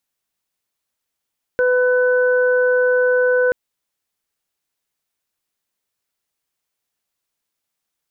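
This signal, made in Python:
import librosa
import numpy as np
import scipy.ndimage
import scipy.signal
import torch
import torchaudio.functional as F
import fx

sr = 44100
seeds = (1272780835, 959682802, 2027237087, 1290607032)

y = fx.additive_steady(sr, length_s=1.93, hz=500.0, level_db=-13.5, upper_db=(-19, -6))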